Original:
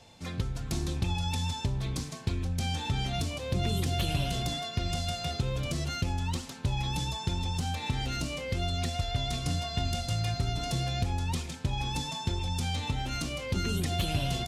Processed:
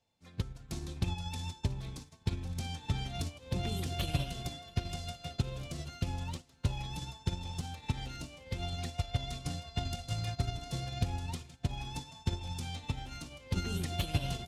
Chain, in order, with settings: swung echo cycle 1.137 s, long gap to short 1.5:1, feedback 42%, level -14 dB; upward expander 2.5:1, over -41 dBFS

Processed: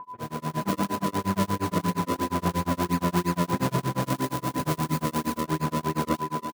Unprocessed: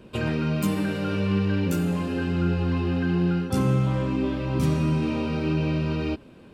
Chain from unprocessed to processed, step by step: one-sided fold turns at -20 dBFS; tape echo 0.358 s, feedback 63%, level -5 dB, low-pass 1500 Hz; decimation with a swept rate 38×, swing 100% 3 Hz; HPF 120 Hz 12 dB/oct; tone controls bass 0 dB, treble -5 dB; whine 1000 Hz -28 dBFS; high shelf 5800 Hz +7 dB, from 3.99 s +12 dB, from 5.37 s +6.5 dB; AGC gain up to 11.5 dB; bands offset in time lows, highs 40 ms, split 2400 Hz; tremolo 8.5 Hz, depth 99%; gain -6.5 dB

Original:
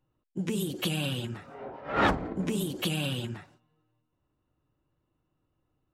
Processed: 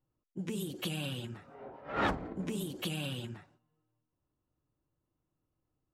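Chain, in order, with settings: mismatched tape noise reduction decoder only; gain -6.5 dB

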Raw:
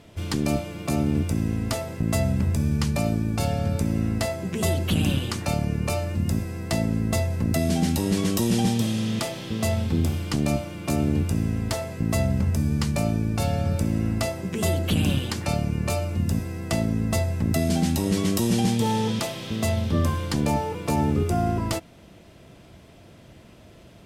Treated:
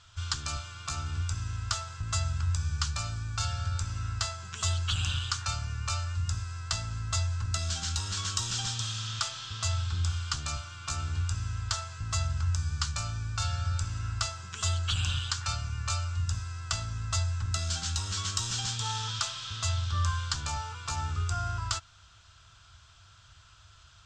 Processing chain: EQ curve 100 Hz 0 dB, 210 Hz -27 dB, 560 Hz -21 dB, 1400 Hz +10 dB, 2000 Hz -7 dB, 3300 Hz +5 dB, 7500 Hz +7 dB, 11000 Hz -25 dB; gain -4 dB

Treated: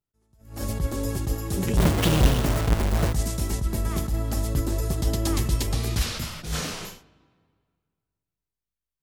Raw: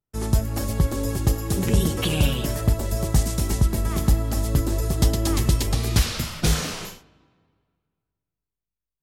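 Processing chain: 1.77–3.13 half-waves squared off; attack slew limiter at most 120 dB/s; gain -2 dB

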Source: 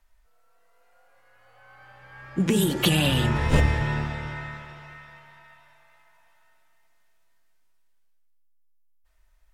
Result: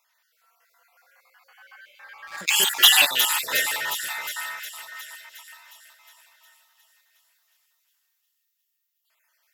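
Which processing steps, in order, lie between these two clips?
random spectral dropouts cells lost 36%; HPF 880 Hz 12 dB/oct; bell 8900 Hz -12.5 dB 0.33 oct; 2.27–3.05 sample leveller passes 2; in parallel at -9 dB: soft clip -28.5 dBFS, distortion -5 dB; on the sum: tilt +2 dB/oct; on a send: thin delay 0.36 s, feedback 62%, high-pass 5300 Hz, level -3.5 dB; on the sum: gain +3 dB

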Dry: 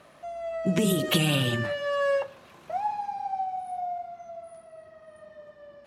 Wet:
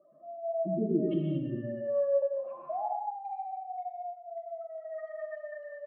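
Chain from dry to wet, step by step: spectral contrast raised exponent 3; recorder AGC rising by 17 dB/s; feedback echo 0.121 s, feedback 24%, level -11 dB; band-pass sweep 340 Hz -> 2000 Hz, 1.91–3.14; non-linear reverb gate 0.26 s flat, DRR 0 dB

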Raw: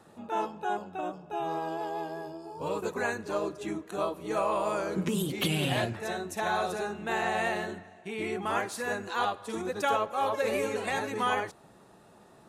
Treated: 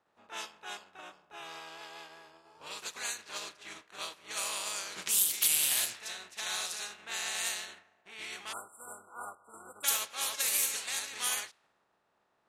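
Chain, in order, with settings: spectral contrast lowered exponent 0.49; pre-emphasis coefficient 0.97; spectral delete 8.53–9.84, 1500–7300 Hz; low-pass opened by the level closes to 900 Hz, open at -30 dBFS; gain +4.5 dB

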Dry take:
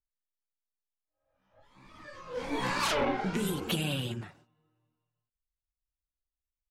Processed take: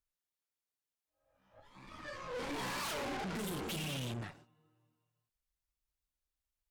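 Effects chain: tube stage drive 44 dB, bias 0.75; gain +6 dB

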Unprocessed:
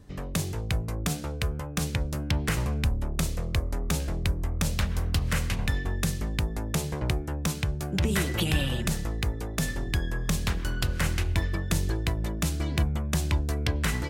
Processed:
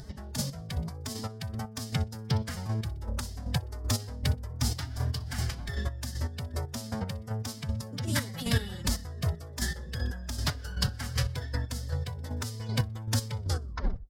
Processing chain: tape stop at the end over 0.72 s; on a send: feedback echo 62 ms, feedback 42%, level -20.5 dB; on the sum: chopper 2.6 Hz, depth 65%, duty 30%; formant-preserving pitch shift +7 st; thirty-one-band EQ 315 Hz -9 dB, 2500 Hz -9 dB, 5000 Hz +10 dB; in parallel at +0.5 dB: upward compressor, threshold -31 dBFS; on the sum: gain -6.5 dB

